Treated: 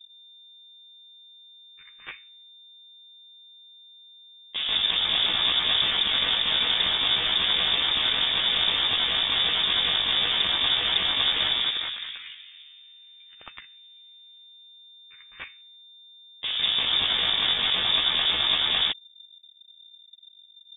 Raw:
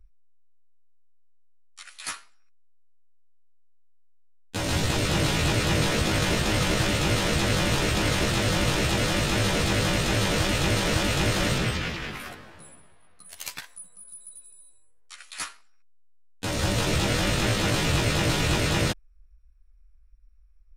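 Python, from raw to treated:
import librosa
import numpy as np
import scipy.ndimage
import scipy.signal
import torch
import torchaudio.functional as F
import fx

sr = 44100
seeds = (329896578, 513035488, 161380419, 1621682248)

y = fx.wiener(x, sr, points=15)
y = fx.freq_invert(y, sr, carrier_hz=3600)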